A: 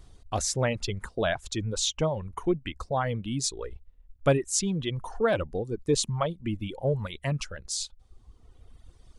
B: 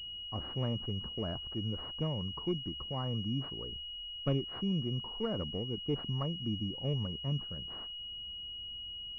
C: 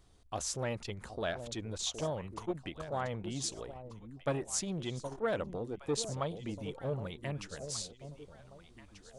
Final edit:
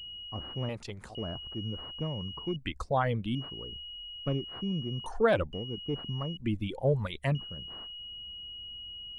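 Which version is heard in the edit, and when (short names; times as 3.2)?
B
0.69–1.15 from C
2.56–3.35 from A
5.06–5.53 from A
6.37–7.35 from A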